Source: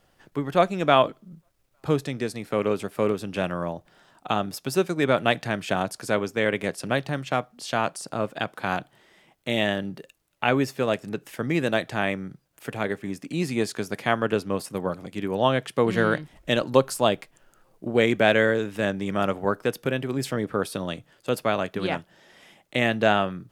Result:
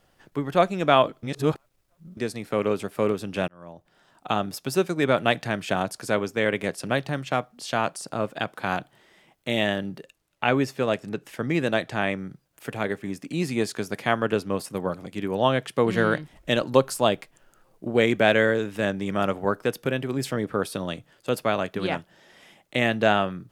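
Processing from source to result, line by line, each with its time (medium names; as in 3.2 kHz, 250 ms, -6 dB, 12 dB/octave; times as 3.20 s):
1.23–2.17 s: reverse
3.48–4.33 s: fade in
9.98–12.19 s: treble shelf 12 kHz -8.5 dB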